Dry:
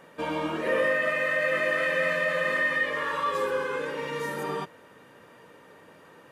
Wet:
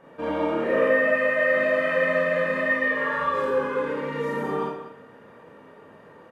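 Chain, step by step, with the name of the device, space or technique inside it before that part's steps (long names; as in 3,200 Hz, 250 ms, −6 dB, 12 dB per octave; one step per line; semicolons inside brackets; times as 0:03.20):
0:02.71–0:03.12: high-pass filter 150 Hz
through cloth (high-shelf EQ 2,600 Hz −16 dB)
slap from a distant wall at 32 metres, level −11 dB
four-comb reverb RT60 0.55 s, combs from 27 ms, DRR −4 dB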